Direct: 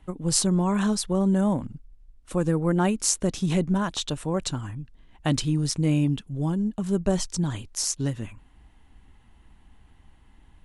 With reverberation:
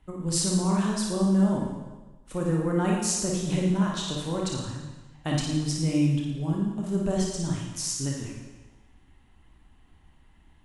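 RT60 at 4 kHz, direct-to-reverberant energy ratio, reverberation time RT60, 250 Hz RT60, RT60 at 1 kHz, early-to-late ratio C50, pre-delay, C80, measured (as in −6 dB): 1.2 s, −2.0 dB, 1.2 s, 1.2 s, 1.2 s, 0.0 dB, 27 ms, 4.0 dB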